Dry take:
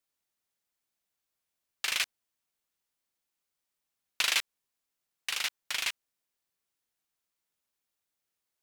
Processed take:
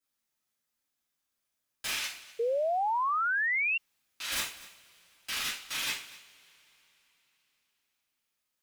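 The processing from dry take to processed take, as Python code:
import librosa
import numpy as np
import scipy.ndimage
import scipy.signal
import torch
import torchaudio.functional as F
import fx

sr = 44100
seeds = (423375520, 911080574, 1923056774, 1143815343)

p1 = fx.over_compress(x, sr, threshold_db=-35.0, ratio=-1.0, at=(1.9, 4.32))
p2 = 10.0 ** (-26.0 / 20.0) * (np.abs((p1 / 10.0 ** (-26.0 / 20.0) + 3.0) % 4.0 - 2.0) - 1.0)
p3 = p2 + fx.echo_single(p2, sr, ms=245, db=-19.0, dry=0)
p4 = fx.rev_double_slope(p3, sr, seeds[0], early_s=0.41, late_s=3.9, knee_db=-28, drr_db=-9.5)
p5 = fx.spec_paint(p4, sr, seeds[1], shape='rise', start_s=2.39, length_s=1.39, low_hz=450.0, high_hz=2800.0, level_db=-20.0)
y = p5 * 10.0 ** (-8.5 / 20.0)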